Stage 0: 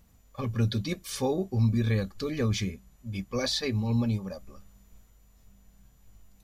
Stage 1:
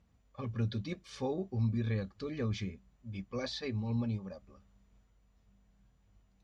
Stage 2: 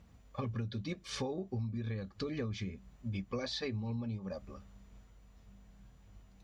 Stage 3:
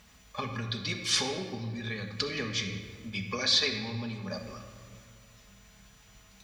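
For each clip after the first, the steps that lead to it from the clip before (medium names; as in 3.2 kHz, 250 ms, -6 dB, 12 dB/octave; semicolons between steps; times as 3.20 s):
high-pass 42 Hz; distance through air 130 m; trim -7 dB
compression 16:1, threshold -43 dBFS, peak gain reduction 17 dB; trim +9 dB
tilt shelf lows -9.5 dB, about 920 Hz; reverberation RT60 1.8 s, pre-delay 5 ms, DRR 3.5 dB; trim +6.5 dB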